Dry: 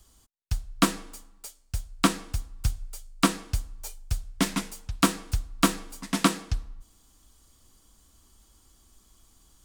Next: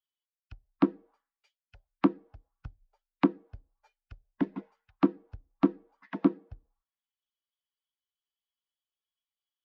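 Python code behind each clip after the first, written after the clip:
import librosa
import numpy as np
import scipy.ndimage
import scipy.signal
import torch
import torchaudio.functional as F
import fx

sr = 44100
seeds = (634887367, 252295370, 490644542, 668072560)

y = fx.bin_expand(x, sr, power=1.5)
y = fx.air_absorb(y, sr, metres=280.0)
y = fx.auto_wah(y, sr, base_hz=320.0, top_hz=2800.0, q=2.3, full_db=-27.0, direction='down')
y = F.gain(torch.from_numpy(y), 4.5).numpy()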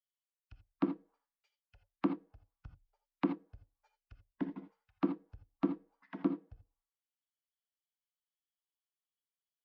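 y = fx.rev_gated(x, sr, seeds[0], gate_ms=100, shape='rising', drr_db=9.0)
y = F.gain(torch.from_numpy(y), -8.5).numpy()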